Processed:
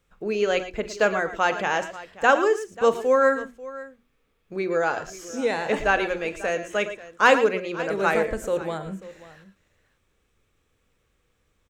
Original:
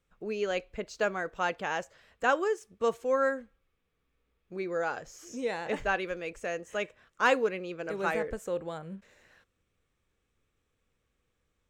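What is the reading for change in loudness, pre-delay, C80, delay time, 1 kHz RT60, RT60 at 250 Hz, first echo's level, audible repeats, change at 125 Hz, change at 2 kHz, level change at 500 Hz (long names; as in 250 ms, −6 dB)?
+8.5 dB, no reverb audible, no reverb audible, 43 ms, no reverb audible, no reverb audible, −15.0 dB, 3, +7.5 dB, +8.5 dB, +8.5 dB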